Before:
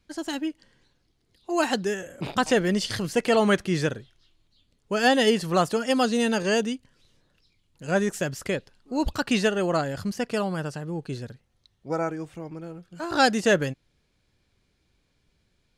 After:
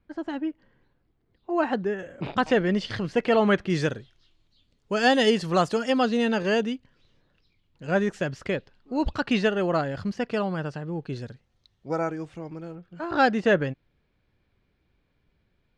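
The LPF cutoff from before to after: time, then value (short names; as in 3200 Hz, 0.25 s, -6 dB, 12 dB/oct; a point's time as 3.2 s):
1700 Hz
from 1.99 s 3000 Hz
from 3.7 s 6400 Hz
from 5.9 s 3600 Hz
from 11.16 s 6100 Hz
from 12.75 s 2600 Hz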